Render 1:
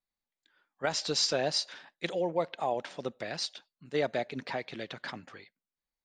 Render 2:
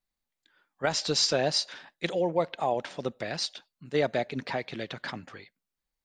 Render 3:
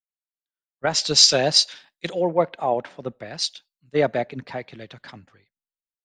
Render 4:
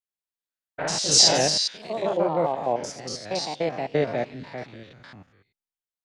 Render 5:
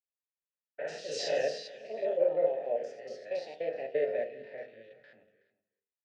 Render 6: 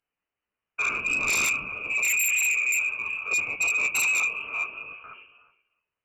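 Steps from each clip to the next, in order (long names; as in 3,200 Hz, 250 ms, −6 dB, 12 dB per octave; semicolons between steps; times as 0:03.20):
low-shelf EQ 130 Hz +6.5 dB; level +3 dB
multiband upward and downward expander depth 100%; level +3.5 dB
spectrum averaged block by block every 100 ms; delay with pitch and tempo change per echo 89 ms, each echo +2 semitones, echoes 2; level −1 dB
formant filter e; single-tap delay 373 ms −20 dB; convolution reverb RT60 0.45 s, pre-delay 4 ms, DRR 4.5 dB
multi-voice chorus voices 4, 0.59 Hz, delay 14 ms, depth 4 ms; voice inversion scrambler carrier 3,000 Hz; sine wavefolder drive 13 dB, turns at −20.5 dBFS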